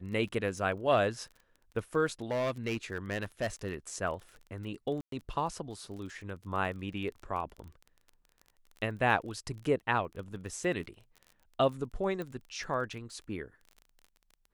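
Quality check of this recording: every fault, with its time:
crackle 25/s -41 dBFS
2.31–3.9 clipped -27.5 dBFS
5.01–5.12 gap 0.113 s
12.22 pop -26 dBFS

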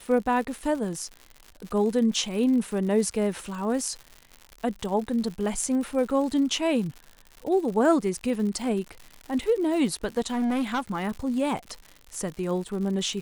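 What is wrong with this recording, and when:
crackle 140/s -34 dBFS
10.26–11.04 clipped -22.5 dBFS

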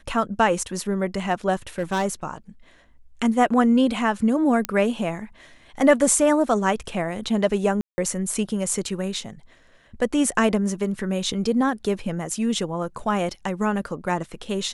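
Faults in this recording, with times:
1.78–2.06 clipped -18.5 dBFS
4.65 pop -8 dBFS
7.81–7.98 gap 0.17 s

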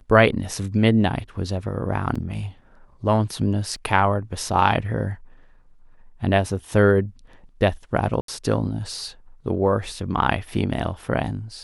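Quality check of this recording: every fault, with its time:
2.15–2.16 gap 5.4 ms
3.76 gap 2.1 ms
8.21–8.28 gap 73 ms

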